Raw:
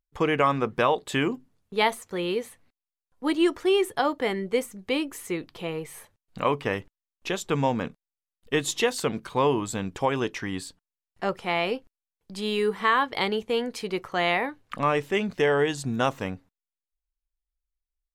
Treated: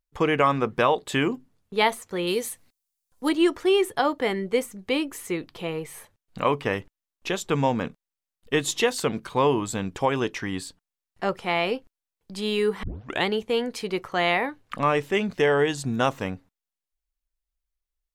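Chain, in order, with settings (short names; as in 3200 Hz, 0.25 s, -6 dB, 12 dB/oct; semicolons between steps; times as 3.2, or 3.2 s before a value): 2.27–3.29 tone controls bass +1 dB, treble +13 dB; 12.83 tape start 0.43 s; gain +1.5 dB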